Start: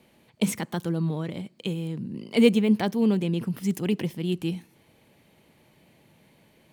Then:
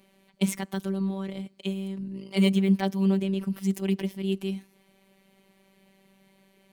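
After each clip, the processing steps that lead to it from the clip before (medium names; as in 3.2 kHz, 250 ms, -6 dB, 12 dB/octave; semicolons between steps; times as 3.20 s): robot voice 193 Hz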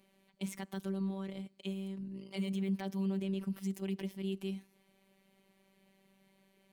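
peak limiter -18.5 dBFS, peak gain reduction 11.5 dB; trim -7.5 dB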